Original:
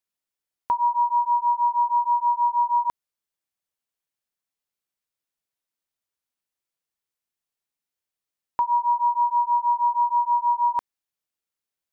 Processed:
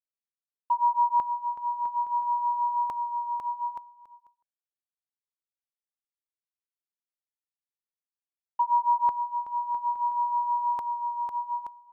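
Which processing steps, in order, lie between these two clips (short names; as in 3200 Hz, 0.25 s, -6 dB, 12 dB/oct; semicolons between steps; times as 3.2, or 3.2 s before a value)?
bouncing-ball echo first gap 0.5 s, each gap 0.75×, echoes 5; expander -21 dBFS; gain -1.5 dB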